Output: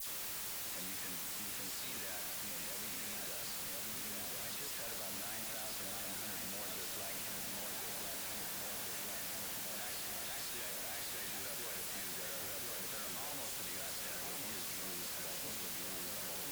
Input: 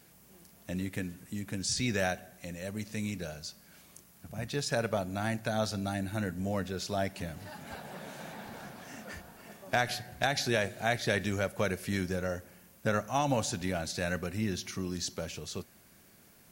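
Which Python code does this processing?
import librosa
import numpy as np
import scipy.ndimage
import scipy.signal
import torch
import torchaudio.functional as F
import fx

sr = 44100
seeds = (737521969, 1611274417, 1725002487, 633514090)

p1 = fx.riaa(x, sr, side='recording')
p2 = fx.notch(p1, sr, hz=5900.0, q=5.3)
p3 = fx.over_compress(p2, sr, threshold_db=-36.0, ratio=-1.0)
p4 = p2 + F.gain(torch.from_numpy(p3), 0.0).numpy()
p5 = fx.echo_filtered(p4, sr, ms=1040, feedback_pct=72, hz=1300.0, wet_db=-5)
p6 = fx.level_steps(p5, sr, step_db=21)
p7 = fx.quant_dither(p6, sr, seeds[0], bits=6, dither='triangular')
p8 = fx.dispersion(p7, sr, late='lows', ms=71.0, hz=2700.0)
p9 = fx.tube_stage(p8, sr, drive_db=42.0, bias=0.35)
y = F.gain(torch.from_numpy(p9), 1.5).numpy()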